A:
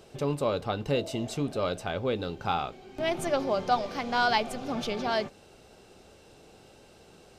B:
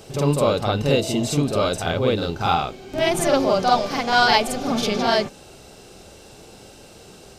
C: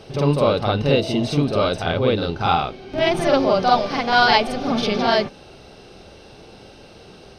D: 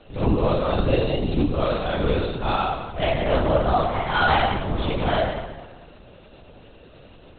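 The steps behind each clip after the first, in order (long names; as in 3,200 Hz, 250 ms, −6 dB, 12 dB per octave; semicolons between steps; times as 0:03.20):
bass and treble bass +2 dB, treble +6 dB; backwards echo 48 ms −3.5 dB; level +7 dB
Savitzky-Golay smoothing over 15 samples; level +1.5 dB
dense smooth reverb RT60 1.3 s, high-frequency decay 0.75×, DRR −2.5 dB; linear-prediction vocoder at 8 kHz whisper; level −7.5 dB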